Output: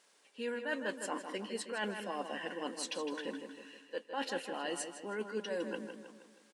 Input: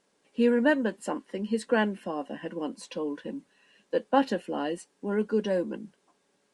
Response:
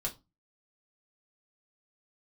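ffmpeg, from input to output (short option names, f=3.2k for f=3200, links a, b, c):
-filter_complex "[0:a]highpass=f=1.4k:p=1,areverse,acompressor=threshold=-42dB:ratio=8,areverse,asplit=2[a][b];[b]adelay=158,lowpass=f=4.7k:p=1,volume=-7.5dB,asplit=2[c][d];[d]adelay=158,lowpass=f=4.7k:p=1,volume=0.5,asplit=2[e][f];[f]adelay=158,lowpass=f=4.7k:p=1,volume=0.5,asplit=2[g][h];[h]adelay=158,lowpass=f=4.7k:p=1,volume=0.5,asplit=2[i][j];[j]adelay=158,lowpass=f=4.7k:p=1,volume=0.5,asplit=2[k][l];[l]adelay=158,lowpass=f=4.7k:p=1,volume=0.5[m];[a][c][e][g][i][k][m]amix=inputs=7:normalize=0,volume=7dB"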